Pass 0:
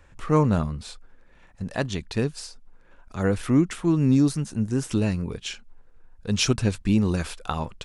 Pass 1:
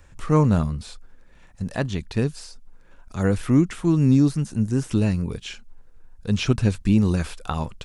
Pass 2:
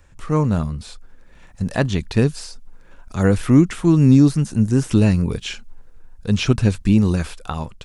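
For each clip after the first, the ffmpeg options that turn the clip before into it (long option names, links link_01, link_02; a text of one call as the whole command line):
ffmpeg -i in.wav -filter_complex "[0:a]acrossover=split=3200[link_01][link_02];[link_02]acompressor=threshold=-46dB:ratio=4:attack=1:release=60[link_03];[link_01][link_03]amix=inputs=2:normalize=0,bass=frequency=250:gain=4,treble=frequency=4000:gain=7" out.wav
ffmpeg -i in.wav -af "dynaudnorm=framelen=240:gausssize=7:maxgain=11.5dB,volume=-1dB" out.wav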